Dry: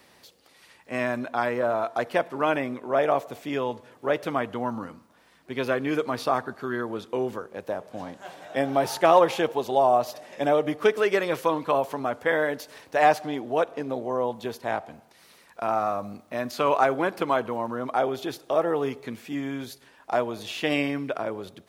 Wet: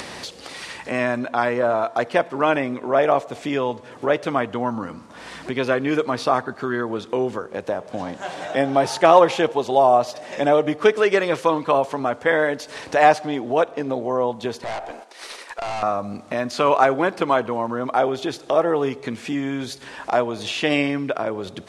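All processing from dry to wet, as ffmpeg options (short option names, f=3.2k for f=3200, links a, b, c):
-filter_complex "[0:a]asettb=1/sr,asplit=3[a][b][c];[a]atrim=end=14.644[d];[b]atrim=start=14.64:end=15.83,asetpts=PTS-STARTPTS,afade=t=in:d=0.004:c=qsin,afade=t=out:st=1.186:d=0.004:c=qsin,agate=range=-9dB:threshold=-56dB:ratio=16:release=100:detection=peak,highpass=f=330:w=0.5412,highpass=f=330:w=1.3066,aeval=exprs='(tanh(56.2*val(0)+0.35)-tanh(0.35))/56.2':c=same[e];[c]atrim=start=15.826[f];[d][e]acrossfade=d=0.004:c1=hsin:c2=qsin[g];[g][f]acrossfade=d=0.004:c1=qsin:c2=hsin,lowpass=f=9.3k:w=0.5412,lowpass=f=9.3k:w=1.3066,acompressor=mode=upward:threshold=-26dB:ratio=2.5,volume=5dB"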